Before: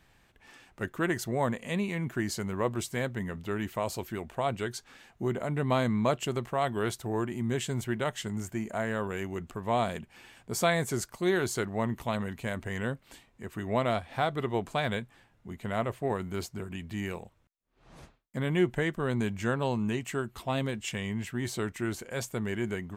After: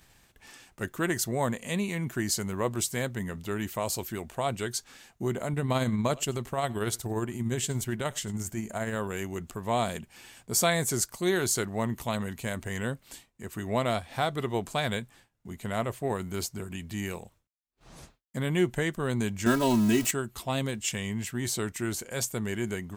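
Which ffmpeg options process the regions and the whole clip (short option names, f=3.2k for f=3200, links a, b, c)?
-filter_complex "[0:a]asettb=1/sr,asplit=3[a][b][c];[a]atrim=end=5.534[d];[b]atrim=start=5.53:end=8.96,asetpts=PTS-STARTPTS,afade=t=in:d=0.004:c=qsin,afade=t=out:st=3.426:d=0.004:c=qsin,lowshelf=f=71:g=8.5,aecho=1:1:92:0.0708,atrim=end_sample=151263,tremolo=f=17:d=0.38[e];[c]atrim=start=8.956[f];[d][e]acrossfade=d=0.004:c1=hsin:c2=qsin[g];[g][f]acrossfade=d=0.004:c1=qsin:c2=hsin,asettb=1/sr,asplit=3[h][i][j];[h]atrim=end=19.464[k];[i]atrim=start=19.46:end=20.11,asetpts=PTS-STARTPTS,afade=t=in:d=0.004:c=qsin,afade=t=out:st=0.646:d=0.004:c=qsin,aeval=exprs='val(0)+0.5*0.0158*sgn(val(0))':c=same,equalizer=f=220:t=o:w=1:g=6,aecho=1:1:3.1:0.85,atrim=end_sample=28665[l];[j]atrim=start=20.106[m];[k][l]acrossfade=d=0.004:c1=hsin:c2=qsin[n];[n][m]acrossfade=d=0.004:c1=qsin:c2=hsin,agate=range=-33dB:threshold=-53dB:ratio=3:detection=peak,bass=f=250:g=1,treble=f=4k:g=10,acompressor=mode=upward:threshold=-46dB:ratio=2.5"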